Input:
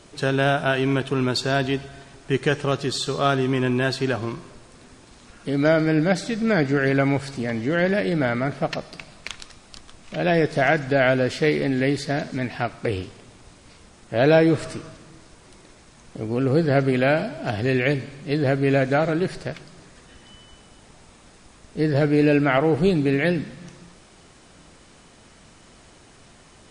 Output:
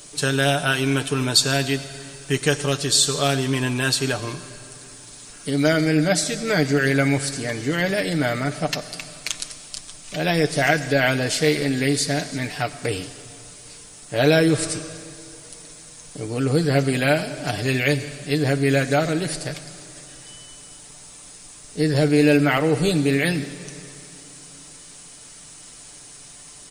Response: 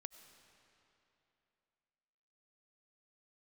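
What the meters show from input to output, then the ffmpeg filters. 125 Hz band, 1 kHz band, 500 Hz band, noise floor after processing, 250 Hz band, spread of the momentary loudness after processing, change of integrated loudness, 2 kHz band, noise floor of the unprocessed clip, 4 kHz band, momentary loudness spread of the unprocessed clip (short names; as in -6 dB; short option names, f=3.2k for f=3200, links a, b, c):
+1.0 dB, -1.0 dB, -1.0 dB, -43 dBFS, +0.5 dB, 22 LU, +1.0 dB, +2.0 dB, -51 dBFS, +7.5 dB, 14 LU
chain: -filter_complex "[0:a]aemphasis=mode=production:type=75kf,aecho=1:1:6.8:0.55,asplit=2[a][b];[1:a]atrim=start_sample=2205,highshelf=f=4.6k:g=11.5[c];[b][c]afir=irnorm=-1:irlink=0,volume=5dB[d];[a][d]amix=inputs=2:normalize=0,volume=-8dB"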